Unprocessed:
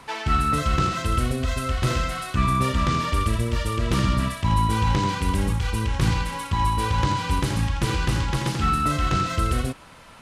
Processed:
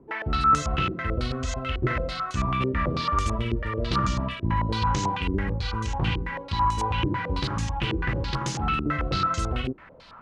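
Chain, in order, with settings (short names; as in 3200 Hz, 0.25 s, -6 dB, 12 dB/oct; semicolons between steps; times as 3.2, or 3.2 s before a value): 3.1–3.56 flutter echo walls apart 10.2 m, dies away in 0.47 s; stepped low-pass 9.1 Hz 360–6600 Hz; gain -5 dB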